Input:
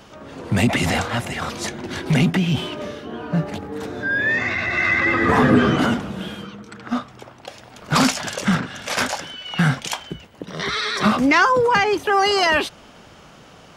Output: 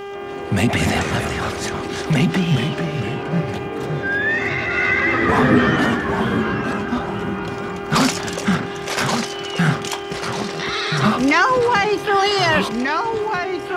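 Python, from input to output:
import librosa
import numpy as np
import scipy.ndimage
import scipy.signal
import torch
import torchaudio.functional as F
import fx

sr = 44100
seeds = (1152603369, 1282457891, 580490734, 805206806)

y = fx.dmg_buzz(x, sr, base_hz=400.0, harmonics=8, level_db=-31.0, tilt_db=-7, odd_only=False)
y = fx.echo_pitch(y, sr, ms=152, semitones=-2, count=3, db_per_echo=-6.0)
y = fx.dmg_crackle(y, sr, seeds[0], per_s=210.0, level_db=-45.0)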